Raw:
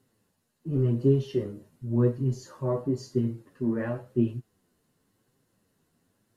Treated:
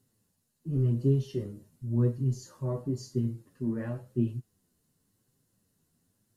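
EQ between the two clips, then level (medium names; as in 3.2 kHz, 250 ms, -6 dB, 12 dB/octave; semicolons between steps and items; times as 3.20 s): tone controls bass +8 dB, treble +10 dB; -8.0 dB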